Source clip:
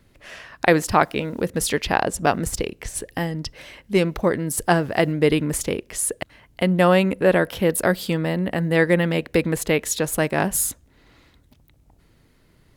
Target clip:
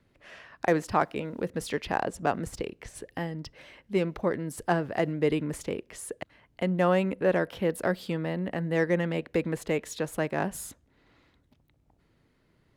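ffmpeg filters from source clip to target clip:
-filter_complex "[0:a]lowpass=f=3.2k:p=1,lowshelf=f=65:g=-9.5,acrossover=split=550|1600[a][b][c];[c]asoftclip=type=tanh:threshold=-24dB[d];[a][b][d]amix=inputs=3:normalize=0,volume=-7dB"

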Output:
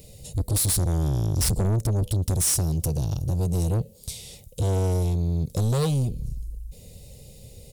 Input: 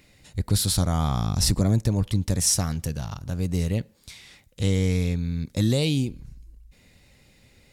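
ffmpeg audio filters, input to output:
-filter_complex "[0:a]firequalizer=gain_entry='entry(140,0);entry(300,-13);entry(460,2);entry(980,-18);entry(1600,-27);entry(2900,-10);entry(9400,3)':delay=0.05:min_phase=1,asplit=2[a][b];[b]acompressor=threshold=-34dB:ratio=6,volume=2dB[c];[a][c]amix=inputs=2:normalize=0,asoftclip=type=tanh:threshold=-26dB,volume=6dB"

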